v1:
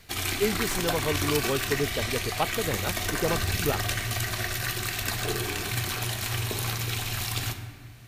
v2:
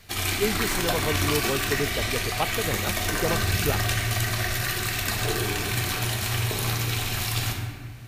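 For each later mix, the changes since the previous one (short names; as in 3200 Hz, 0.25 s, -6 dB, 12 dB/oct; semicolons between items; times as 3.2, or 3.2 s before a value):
background: send +7.5 dB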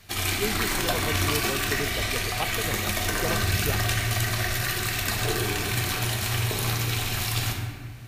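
speech -4.5 dB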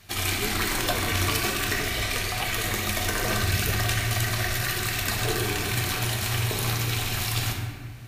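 speech -5.5 dB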